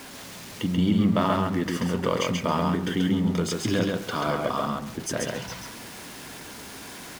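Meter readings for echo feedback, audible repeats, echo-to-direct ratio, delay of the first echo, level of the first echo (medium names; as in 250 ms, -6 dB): 16%, 2, -3.0 dB, 135 ms, -3.0 dB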